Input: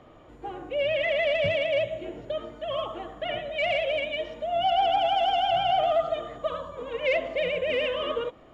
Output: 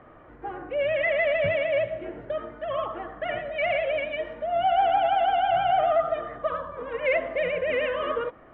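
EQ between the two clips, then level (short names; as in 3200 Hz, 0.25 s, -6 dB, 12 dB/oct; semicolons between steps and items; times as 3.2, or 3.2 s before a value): synth low-pass 1700 Hz, resonance Q 2.3; 0.0 dB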